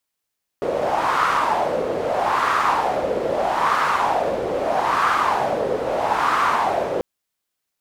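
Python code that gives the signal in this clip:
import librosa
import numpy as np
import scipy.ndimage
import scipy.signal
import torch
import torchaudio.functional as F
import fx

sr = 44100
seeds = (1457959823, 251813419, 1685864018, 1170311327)

y = fx.wind(sr, seeds[0], length_s=6.39, low_hz=490.0, high_hz=1200.0, q=4.0, gusts=5, swing_db=4.0)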